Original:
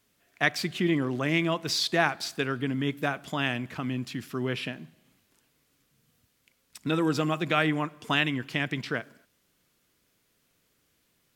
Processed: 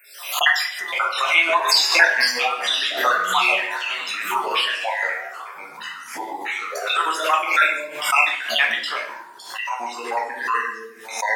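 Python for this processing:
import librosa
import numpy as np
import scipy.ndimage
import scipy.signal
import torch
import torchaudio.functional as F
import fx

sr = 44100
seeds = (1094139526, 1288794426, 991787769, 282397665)

p1 = fx.spec_dropout(x, sr, seeds[0], share_pct=65)
p2 = scipy.signal.sosfilt(scipy.signal.butter(4, 820.0, 'highpass', fs=sr, output='sos'), p1)
p3 = fx.rider(p2, sr, range_db=4, speed_s=2.0)
p4 = p2 + F.gain(torch.from_numpy(p3), 1.5).numpy()
p5 = fx.room_shoebox(p4, sr, seeds[1], volume_m3=51.0, walls='mixed', distance_m=0.97)
p6 = fx.echo_pitch(p5, sr, ms=380, semitones=-5, count=2, db_per_echo=-6.0)
p7 = p6 + fx.echo_multitap(p6, sr, ms=(118, 139), db=(-20.0, -18.0), dry=0)
p8 = fx.pre_swell(p7, sr, db_per_s=87.0)
y = F.gain(torch.from_numpy(p8), 4.0).numpy()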